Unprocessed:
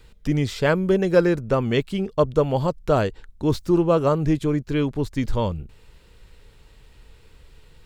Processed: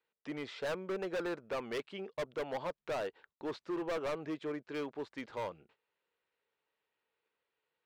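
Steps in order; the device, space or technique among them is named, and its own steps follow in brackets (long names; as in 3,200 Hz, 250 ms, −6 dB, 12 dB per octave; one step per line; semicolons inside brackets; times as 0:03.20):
walkie-talkie (band-pass filter 510–2,700 Hz; hard clipping −25.5 dBFS, distortion −5 dB; noise gate −58 dBFS, range −17 dB)
level −7.5 dB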